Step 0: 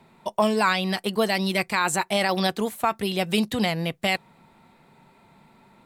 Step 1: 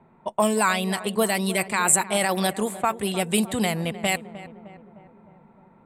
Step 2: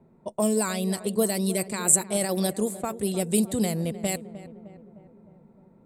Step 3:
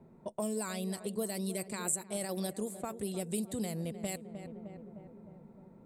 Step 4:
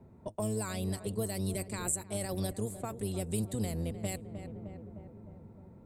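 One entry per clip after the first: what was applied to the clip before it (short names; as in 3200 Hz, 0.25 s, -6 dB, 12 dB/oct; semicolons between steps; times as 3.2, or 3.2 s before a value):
low-pass opened by the level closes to 1400 Hz, open at -19.5 dBFS; resonant high shelf 6700 Hz +7.5 dB, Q 3; darkening echo 0.306 s, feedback 62%, low-pass 1400 Hz, level -14 dB
band shelf 1600 Hz -11.5 dB 2.5 oct
compressor 2:1, threshold -42 dBFS, peak gain reduction 15.5 dB
octaver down 1 oct, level 0 dB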